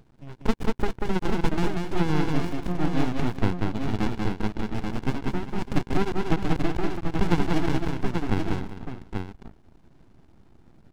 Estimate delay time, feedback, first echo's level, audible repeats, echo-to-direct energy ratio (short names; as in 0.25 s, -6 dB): 0.189 s, no steady repeat, -3.5 dB, 4, -1.0 dB